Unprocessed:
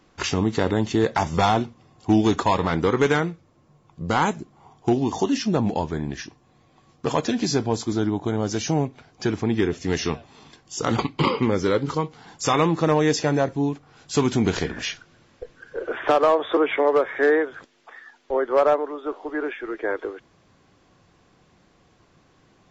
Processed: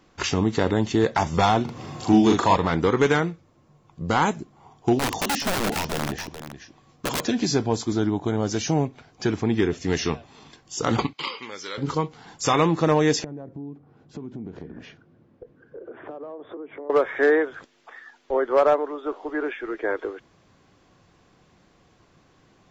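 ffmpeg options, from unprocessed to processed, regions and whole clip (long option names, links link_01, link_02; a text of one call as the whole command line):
ffmpeg -i in.wav -filter_complex "[0:a]asettb=1/sr,asplit=3[link_01][link_02][link_03];[link_01]atrim=end=1.654[link_04];[link_02]atrim=start=1.65:end=2.56,asetpts=PTS-STARTPTS,afade=type=in:duration=0.004:curve=qsin,afade=type=out:start_time=0.906:duration=0.004:curve=qsin,highpass=80,acompressor=mode=upward:threshold=-21dB:ratio=2.5:attack=3.2:release=140:knee=2.83:detection=peak,asplit=2[link_05][link_06];[link_06]adelay=41,volume=-3dB[link_07];[link_05][link_07]amix=inputs=2:normalize=0,atrim=end_sample=40131[link_08];[link_03]atrim=start=2.556[link_09];[link_04][link_08]acrossfade=duration=0.004:curve1=hsin:curve2=qsin[link_10];[link_10][link_09]acrossfade=duration=0.004:curve1=qsin:curve2=hsin,asettb=1/sr,asplit=3[link_11][link_12][link_13];[link_11]atrim=end=4.994[link_14];[link_12]atrim=start=4.99:end=7.21,asetpts=PTS-STARTPTS,afade=type=in:duration=0.004:curve=qsin,afade=type=out:start_time=2.216:duration=0.004:curve=qsin,aeval=exprs='(mod(8.91*val(0)+1,2)-1)/8.91':channel_layout=same,aecho=1:1:425:0.299,atrim=end_sample=97902[link_15];[link_13]atrim=start=7.206[link_16];[link_14][link_15]acrossfade=duration=0.004:curve1=hsin:curve2=qsin[link_17];[link_17][link_16]acrossfade=duration=0.004:curve1=qsin:curve2=hsin,asettb=1/sr,asplit=3[link_18][link_19][link_20];[link_18]atrim=end=11.134[link_21];[link_19]atrim=start=11.13:end=11.78,asetpts=PTS-STARTPTS,afade=type=in:duration=0.004:curve=qsin,afade=type=out:start_time=0.646:duration=0.004:curve=qsin,lowpass=4800,aderivative,acontrast=67[link_22];[link_20]atrim=start=11.776[link_23];[link_21][link_22]acrossfade=duration=0.004:curve1=hsin:curve2=qsin[link_24];[link_24][link_23]acrossfade=duration=0.004:curve1=qsin:curve2=hsin,asettb=1/sr,asplit=3[link_25][link_26][link_27];[link_25]atrim=end=13.244[link_28];[link_26]atrim=start=13.24:end=16.9,asetpts=PTS-STARTPTS,afade=type=in:duration=0.004:curve=qsin,afade=type=out:start_time=3.656:duration=0.004:curve=qsin,bandpass=frequency=260:width_type=q:width=0.76,acompressor=threshold=-38dB:ratio=4:attack=3.2:release=140:knee=1:detection=peak,lowshelf=frequency=240:gain=5.5[link_29];[link_27]atrim=start=16.896[link_30];[link_28][link_29]acrossfade=duration=0.004:curve1=hsin:curve2=qsin[link_31];[link_31][link_30]acrossfade=duration=0.004:curve1=qsin:curve2=hsin" out.wav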